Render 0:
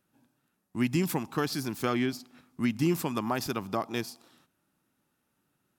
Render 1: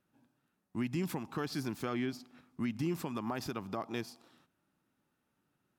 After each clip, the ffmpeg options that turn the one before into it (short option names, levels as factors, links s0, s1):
-af "highshelf=f=5500:g=-8.5,alimiter=limit=0.0708:level=0:latency=1:release=146,volume=0.75"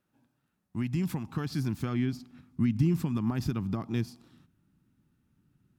-af "asubboost=boost=10.5:cutoff=190"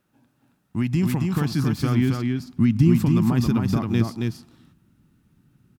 -af "aecho=1:1:272:0.668,volume=2.51"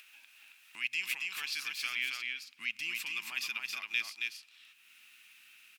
-af "highpass=f=2500:t=q:w=4.7,acompressor=mode=upward:threshold=0.0112:ratio=2.5,volume=0.631"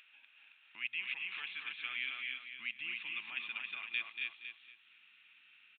-af "aecho=1:1:234|468|702:0.447|0.125|0.035,aresample=8000,aresample=44100,volume=0.596"